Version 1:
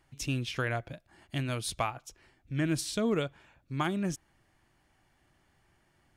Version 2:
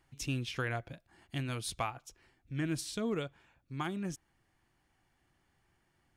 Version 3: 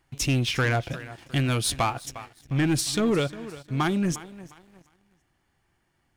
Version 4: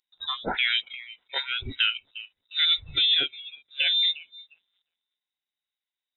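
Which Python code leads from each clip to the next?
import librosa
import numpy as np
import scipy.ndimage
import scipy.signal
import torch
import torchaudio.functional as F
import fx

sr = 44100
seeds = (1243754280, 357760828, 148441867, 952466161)

y1 = fx.notch(x, sr, hz=610.0, q=12.0)
y1 = fx.rider(y1, sr, range_db=10, speed_s=2.0)
y1 = F.gain(torch.from_numpy(y1), -3.5).numpy()
y2 = fx.echo_feedback(y1, sr, ms=355, feedback_pct=43, wet_db=-18.5)
y2 = fx.leveller(y2, sr, passes=2)
y2 = F.gain(torch.from_numpy(y2), 6.5).numpy()
y3 = fx.freq_invert(y2, sr, carrier_hz=3800)
y3 = fx.noise_reduce_blind(y3, sr, reduce_db=24)
y3 = F.gain(torch.from_numpy(y3), 1.5).numpy()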